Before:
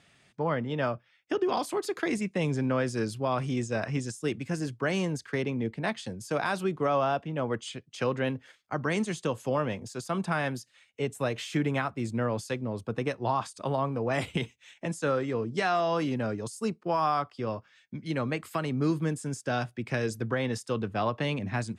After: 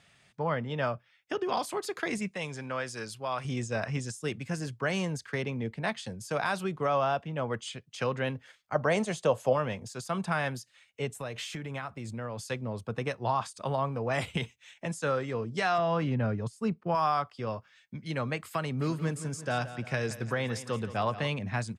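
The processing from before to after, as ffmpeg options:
-filter_complex "[0:a]asettb=1/sr,asplit=3[a][b][c];[a]atrim=end=2.354[d];[b]atrim=start=2.35:end=3.45,asetpts=PTS-STARTPTS,afade=t=in:d=0.004:c=qsin,afade=t=out:st=1.096:d=0.004:c=qsin,lowshelf=f=470:g=-11.5[e];[c]atrim=start=3.446[f];[d][e]acrossfade=d=0.004:c1=hsin:c2=qsin[g];[g][f]acrossfade=d=0.004:c1=qsin:c2=hsin,asettb=1/sr,asplit=3[h][i][j];[h]atrim=end=8.754[k];[i]atrim=start=8.75:end=9.53,asetpts=PTS-STARTPTS,afade=t=in:d=0.004:c=qsin,afade=t=out:st=0.776:d=0.004:c=qsin,equalizer=f=630:t=o:w=0.87:g=12[l];[j]atrim=start=9.526[m];[k][l]acrossfade=d=0.004:c1=hsin:c2=qsin[n];[n][m]acrossfade=d=0.004:c1=qsin:c2=hsin,asettb=1/sr,asplit=3[o][p][q];[o]atrim=end=11.144[r];[p]atrim=start=11.14:end=12.47,asetpts=PTS-STARTPTS,afade=t=in:d=0.004:c=qsin,afade=t=out:st=1.326:d=0.004:c=qsin,acompressor=threshold=-32dB:ratio=4:attack=3.2:release=140:knee=1:detection=peak[s];[q]atrim=start=12.466[t];[r][s]acrossfade=d=0.004:c1=hsin:c2=qsin[u];[u][t]acrossfade=d=0.004:c1=qsin:c2=hsin,asettb=1/sr,asplit=3[v][w][x];[v]atrim=end=15.784[y];[w]atrim=start=15.78:end=16.95,asetpts=PTS-STARTPTS,afade=t=in:d=0.004:c=qsin,afade=t=out:st=1.166:d=0.004:c=qsin,bass=f=250:g=7,treble=f=4k:g=-13[z];[x]atrim=start=16.946[aa];[y][z]acrossfade=d=0.004:c1=hsin:c2=qsin[ab];[ab][aa]acrossfade=d=0.004:c1=qsin:c2=hsin,asplit=3[ac][ad][ae];[ac]afade=t=out:st=18.78:d=0.02[af];[ad]aecho=1:1:173|346|519|692|865:0.2|0.104|0.054|0.0281|0.0146,afade=t=in:st=18.78:d=0.02,afade=t=out:st=21.27:d=0.02[ag];[ae]afade=t=in:st=21.27:d=0.02[ah];[af][ag][ah]amix=inputs=3:normalize=0,equalizer=f=310:t=o:w=0.87:g=-7"

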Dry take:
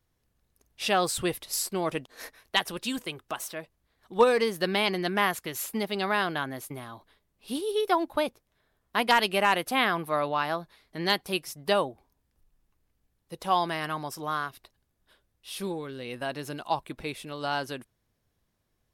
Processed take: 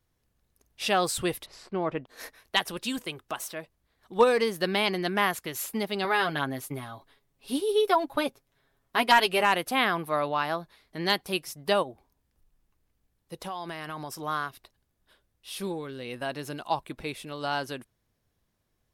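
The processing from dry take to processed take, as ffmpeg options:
-filter_complex "[0:a]asettb=1/sr,asplit=3[a][b][c];[a]atrim=end=1.464[d];[b]atrim=start=1.46:end=2.07,asetpts=PTS-STARTPTS,afade=t=in:d=0.004:c=qsin,afade=t=out:st=0.606:d=0.004:c=qsin,lowpass=2k[e];[c]atrim=start=2.066[f];[d][e]acrossfade=d=0.004:c1=hsin:c2=qsin[g];[g][f]acrossfade=d=0.004:c1=qsin:c2=hsin,asettb=1/sr,asplit=3[h][i][j];[h]atrim=end=6.044[k];[i]atrim=start=6.04:end=9.43,asetpts=PTS-STARTPTS,afade=t=in:d=0.004:c=qsin,afade=t=out:st=3.386:d=0.004:c=qsin,aecho=1:1:7.3:0.65,atrim=end_sample=149499[l];[j]atrim=start=9.426[m];[k][l]acrossfade=d=0.004:c1=hsin:c2=qsin[n];[n][m]acrossfade=d=0.004:c1=qsin:c2=hsin,asplit=3[o][p][q];[o]afade=t=out:st=11.82:d=0.02[r];[p]acompressor=threshold=-32dB:ratio=6:attack=3.2:release=140:knee=1:detection=peak,afade=t=in:st=11.82:d=0.02,afade=t=out:st=14.23:d=0.02[s];[q]afade=t=in:st=14.23:d=0.02[t];[r][s][t]amix=inputs=3:normalize=0"

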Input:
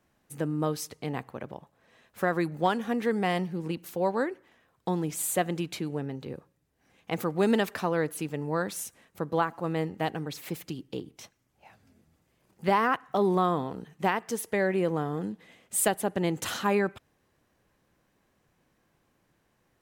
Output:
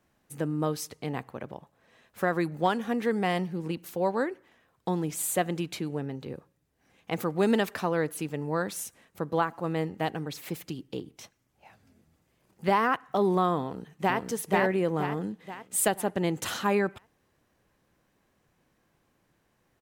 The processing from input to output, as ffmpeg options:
-filter_complex "[0:a]asplit=2[a][b];[b]afade=t=in:st=13.61:d=0.01,afade=t=out:st=14.18:d=0.01,aecho=0:1:480|960|1440|1920|2400|2880:0.891251|0.401063|0.180478|0.0812152|0.0365469|0.0164461[c];[a][c]amix=inputs=2:normalize=0"

